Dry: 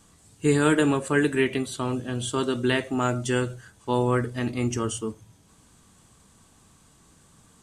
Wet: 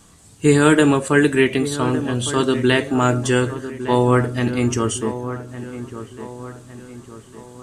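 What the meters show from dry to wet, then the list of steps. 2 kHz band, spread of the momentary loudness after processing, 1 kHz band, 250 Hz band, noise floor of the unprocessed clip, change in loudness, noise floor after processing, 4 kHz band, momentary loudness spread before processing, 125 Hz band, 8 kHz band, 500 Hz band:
+7.0 dB, 18 LU, +7.5 dB, +7.5 dB, −58 dBFS, +7.0 dB, −47 dBFS, +7.0 dB, 8 LU, +7.5 dB, +7.0 dB, +7.5 dB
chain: delay with a low-pass on its return 1,158 ms, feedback 45%, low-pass 1,900 Hz, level −12 dB
level +7 dB

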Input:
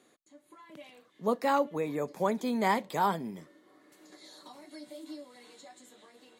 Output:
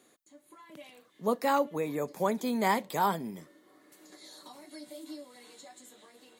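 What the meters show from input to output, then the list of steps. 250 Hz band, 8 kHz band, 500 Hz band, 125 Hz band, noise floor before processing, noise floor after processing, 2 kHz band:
0.0 dB, +4.0 dB, 0.0 dB, 0.0 dB, −66 dBFS, −65 dBFS, +0.5 dB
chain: high-shelf EQ 8,600 Hz +9.5 dB

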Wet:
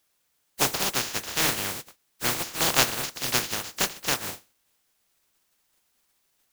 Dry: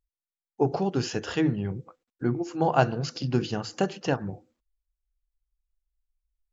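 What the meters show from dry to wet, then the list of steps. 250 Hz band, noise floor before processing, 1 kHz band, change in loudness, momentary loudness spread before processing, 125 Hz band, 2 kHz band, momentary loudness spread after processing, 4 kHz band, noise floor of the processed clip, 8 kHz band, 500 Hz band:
−9.5 dB, below −85 dBFS, −1.5 dB, +2.5 dB, 8 LU, −10.0 dB, +7.5 dB, 8 LU, +12.0 dB, −72 dBFS, can't be measured, −7.0 dB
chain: compressing power law on the bin magnitudes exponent 0.14
bit-depth reduction 12 bits, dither triangular

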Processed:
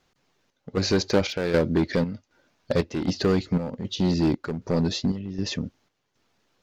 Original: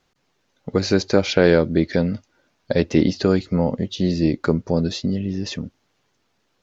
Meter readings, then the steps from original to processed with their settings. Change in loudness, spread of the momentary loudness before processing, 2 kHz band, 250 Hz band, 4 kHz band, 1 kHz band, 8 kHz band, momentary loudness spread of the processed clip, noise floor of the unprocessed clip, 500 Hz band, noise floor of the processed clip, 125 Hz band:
−5.0 dB, 11 LU, −5.5 dB, −5.0 dB, −2.0 dB, −4.0 dB, can't be measured, 8 LU, −69 dBFS, −6.0 dB, −76 dBFS, −4.0 dB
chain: in parallel at −3.5 dB: wave folding −17 dBFS
on the sum: square-wave tremolo 1.3 Hz, depth 60%, duty 65%
level −5 dB

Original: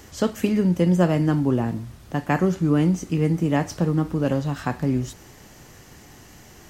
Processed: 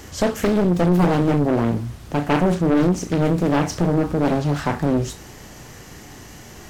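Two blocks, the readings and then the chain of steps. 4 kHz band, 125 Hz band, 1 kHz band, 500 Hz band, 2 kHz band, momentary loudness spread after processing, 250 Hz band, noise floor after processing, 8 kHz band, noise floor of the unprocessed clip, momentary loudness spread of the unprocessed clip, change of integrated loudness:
+5.0 dB, +1.0 dB, +5.5 dB, +4.5 dB, +3.5 dB, 6 LU, +2.0 dB, −41 dBFS, +5.0 dB, −47 dBFS, 8 LU, +2.5 dB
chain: flutter between parallel walls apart 5.9 metres, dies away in 0.22 s
soft clipping −17 dBFS, distortion −12 dB
highs frequency-modulated by the lows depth 0.92 ms
level +6 dB

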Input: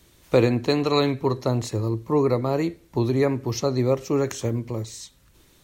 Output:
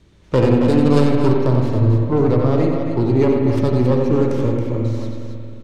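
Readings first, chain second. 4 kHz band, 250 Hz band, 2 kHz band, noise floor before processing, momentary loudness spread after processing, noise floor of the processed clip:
−3.5 dB, +8.5 dB, +2.0 dB, −57 dBFS, 8 LU, −48 dBFS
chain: stylus tracing distortion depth 0.45 ms
low-shelf EQ 420 Hz +8 dB
in parallel at −8 dB: wave folding −10.5 dBFS
on the sum: high-frequency loss of the air 91 metres
loudspeakers that aren't time-aligned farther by 31 metres −7 dB, 94 metres −7 dB
spring reverb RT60 2.6 s, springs 45/55 ms, chirp 60 ms, DRR 3 dB
level −4 dB

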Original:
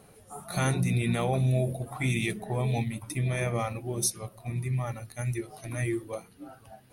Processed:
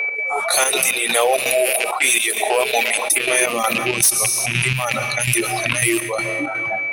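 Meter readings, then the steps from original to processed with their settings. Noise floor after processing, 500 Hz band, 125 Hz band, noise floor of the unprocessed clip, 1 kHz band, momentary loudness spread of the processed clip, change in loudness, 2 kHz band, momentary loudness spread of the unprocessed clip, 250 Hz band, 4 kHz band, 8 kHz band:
−25 dBFS, +13.5 dB, −2.5 dB, −57 dBFS, +15.0 dB, 6 LU, +13.0 dB, +19.5 dB, 14 LU, +4.0 dB, +19.5 dB, +19.5 dB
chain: loose part that buzzes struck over −34 dBFS, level −28 dBFS
automatic gain control gain up to 7.5 dB
high-pass filter sweep 480 Hz → 130 Hz, 0:03.13–0:04.02
RIAA equalisation recording
low-pass that shuts in the quiet parts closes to 1,200 Hz, open at −19.5 dBFS
steady tone 2,300 Hz −37 dBFS
reverb reduction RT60 1.5 s
comb and all-pass reverb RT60 2.1 s, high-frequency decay 0.85×, pre-delay 90 ms, DRR 18 dB
soft clipping −9.5 dBFS, distortion −8 dB
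gate pattern "x.xxxxx.xx..xx" 165 BPM −12 dB
low-shelf EQ 280 Hz −8 dB
envelope flattener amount 70%
level −1 dB

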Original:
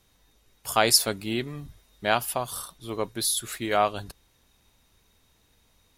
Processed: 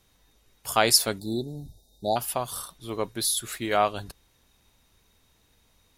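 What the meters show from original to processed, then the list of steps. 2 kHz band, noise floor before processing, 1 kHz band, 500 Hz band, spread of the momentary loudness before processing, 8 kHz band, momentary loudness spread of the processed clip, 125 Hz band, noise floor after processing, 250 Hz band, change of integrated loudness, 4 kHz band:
−2.0 dB, −65 dBFS, −0.5 dB, 0.0 dB, 17 LU, 0.0 dB, 17 LU, 0.0 dB, −65 dBFS, 0.0 dB, 0.0 dB, −0.5 dB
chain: time-frequency box erased 0:01.19–0:02.17, 900–3,500 Hz

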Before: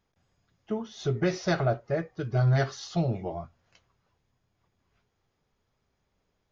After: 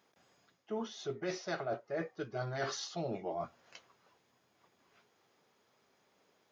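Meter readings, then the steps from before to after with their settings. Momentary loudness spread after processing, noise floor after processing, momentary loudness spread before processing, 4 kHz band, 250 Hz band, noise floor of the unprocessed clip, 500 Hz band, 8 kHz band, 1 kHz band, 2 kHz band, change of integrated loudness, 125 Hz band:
8 LU, −74 dBFS, 11 LU, −4.0 dB, −11.0 dB, −77 dBFS, −7.5 dB, can't be measured, −6.5 dB, −7.5 dB, −10.5 dB, −19.0 dB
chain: high-pass filter 280 Hz 12 dB per octave
reversed playback
downward compressor 5 to 1, threshold −44 dBFS, peak gain reduction 19 dB
reversed playback
level +7.5 dB

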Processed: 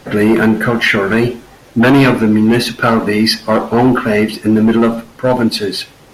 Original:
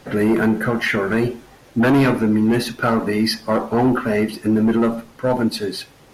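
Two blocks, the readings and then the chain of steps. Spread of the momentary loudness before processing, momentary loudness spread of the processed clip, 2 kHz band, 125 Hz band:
8 LU, 8 LU, +8.0 dB, +6.0 dB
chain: dynamic equaliser 3,100 Hz, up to +5 dB, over −40 dBFS, Q 1.1
level +6 dB

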